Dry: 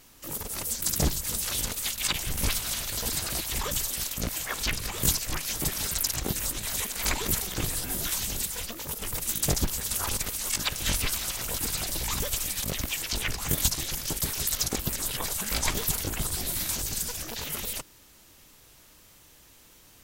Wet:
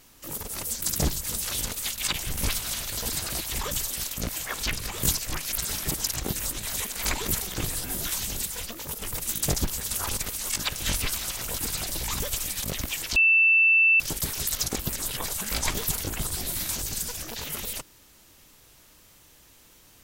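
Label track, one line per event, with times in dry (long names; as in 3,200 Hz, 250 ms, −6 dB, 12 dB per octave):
5.520000	6.040000	reverse
13.160000	14.000000	beep over 2,660 Hz −15.5 dBFS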